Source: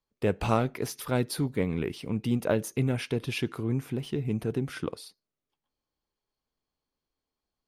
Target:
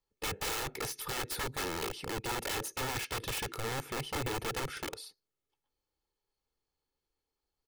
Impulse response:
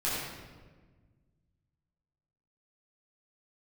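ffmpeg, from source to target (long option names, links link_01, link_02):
-af "aeval=exprs='(mod(26.6*val(0)+1,2)-1)/26.6':channel_layout=same,aecho=1:1:2.3:0.47,volume=-2dB"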